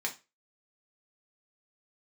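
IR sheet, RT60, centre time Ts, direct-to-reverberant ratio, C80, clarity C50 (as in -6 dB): 0.25 s, 11 ms, -0.5 dB, 21.5 dB, 14.0 dB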